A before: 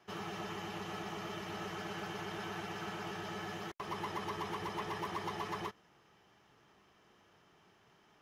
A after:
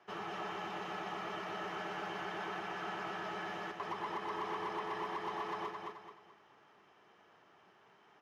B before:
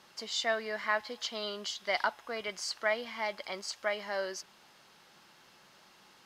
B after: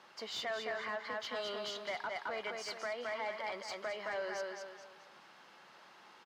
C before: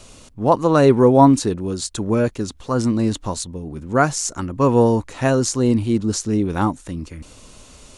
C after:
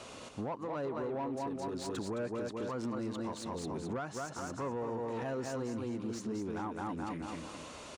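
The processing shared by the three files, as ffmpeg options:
-filter_complex "[0:a]asplit=2[s0][s1];[s1]aecho=0:1:215|430|645|860:0.531|0.181|0.0614|0.0209[s2];[s0][s2]amix=inputs=2:normalize=0,acompressor=threshold=0.0501:ratio=6,asplit=2[s3][s4];[s4]highpass=f=720:p=1,volume=8.91,asoftclip=type=tanh:threshold=0.2[s5];[s3][s5]amix=inputs=2:normalize=0,lowpass=f=1300:p=1,volume=0.501,alimiter=limit=0.0708:level=0:latency=1:release=244,highpass=63,volume=0.422"

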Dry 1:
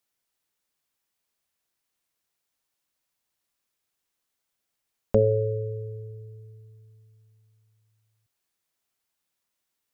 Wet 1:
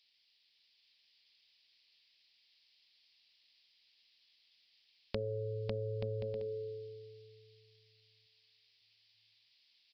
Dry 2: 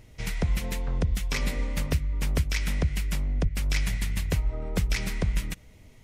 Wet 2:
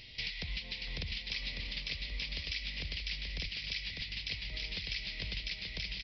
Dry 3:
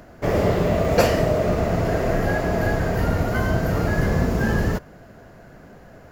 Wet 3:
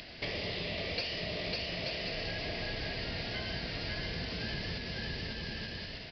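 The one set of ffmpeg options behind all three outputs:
-af "aecho=1:1:550|880|1078|1197|1268:0.631|0.398|0.251|0.158|0.1,aexciter=amount=6.3:drive=9.6:freq=2100,acompressor=threshold=0.0355:ratio=4,aresample=11025,aresample=44100,volume=0.447"

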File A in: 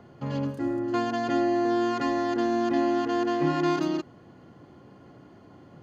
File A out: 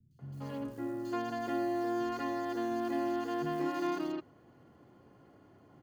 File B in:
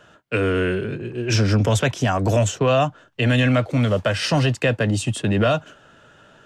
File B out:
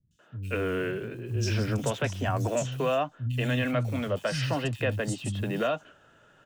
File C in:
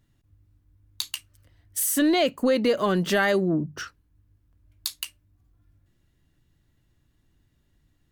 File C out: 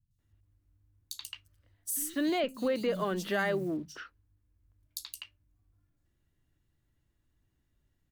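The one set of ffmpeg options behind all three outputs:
-filter_complex "[0:a]acrusher=bits=8:mode=log:mix=0:aa=0.000001,acrossover=split=180|4100[s0][s1][s2];[s2]adelay=110[s3];[s1]adelay=190[s4];[s0][s4][s3]amix=inputs=3:normalize=0,volume=0.398"

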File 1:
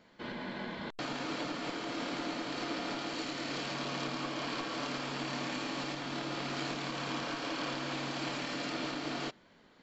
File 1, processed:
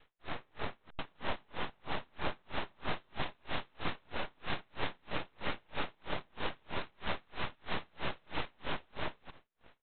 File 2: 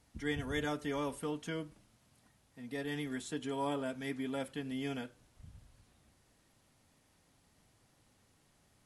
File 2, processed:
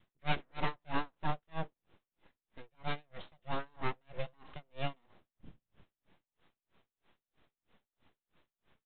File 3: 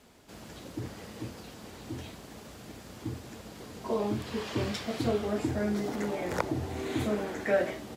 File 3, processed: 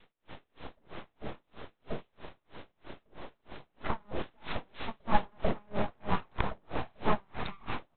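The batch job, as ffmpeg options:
-af "adynamicequalizer=threshold=0.00398:dfrequency=510:dqfactor=1.3:tfrequency=510:tqfactor=1.3:attack=5:release=100:ratio=0.375:range=3:mode=boostabove:tftype=bell,aresample=8000,aeval=exprs='abs(val(0))':c=same,aresample=44100,aeval=exprs='val(0)*pow(10,-39*(0.5-0.5*cos(2*PI*3.1*n/s))/20)':c=same,volume=1.88"

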